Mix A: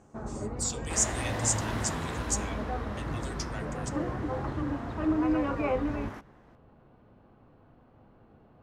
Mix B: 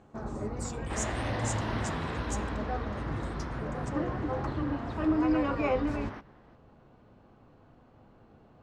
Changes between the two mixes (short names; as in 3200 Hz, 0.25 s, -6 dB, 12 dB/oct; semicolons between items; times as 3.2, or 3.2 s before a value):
speech -11.0 dB; first sound: remove air absorption 170 m; second sound: add polynomial smoothing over 15 samples